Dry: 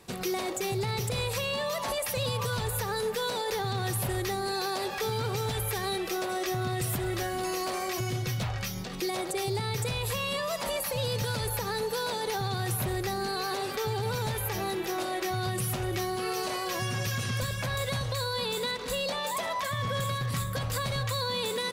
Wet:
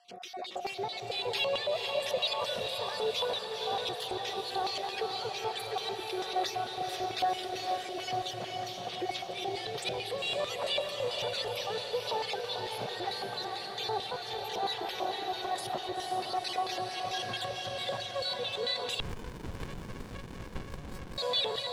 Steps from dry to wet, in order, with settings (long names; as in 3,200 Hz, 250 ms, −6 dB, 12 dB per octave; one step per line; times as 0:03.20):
time-frequency cells dropped at random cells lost 30%
automatic gain control gain up to 5.5 dB
steady tone 710 Hz −42 dBFS
rotating-speaker cabinet horn 1.2 Hz
auto-filter band-pass square 4.5 Hz 700–3,400 Hz
feedback delay with all-pass diffusion 485 ms, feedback 60%, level −4.5 dB
0:19.00–0:21.18: windowed peak hold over 65 samples
level +3 dB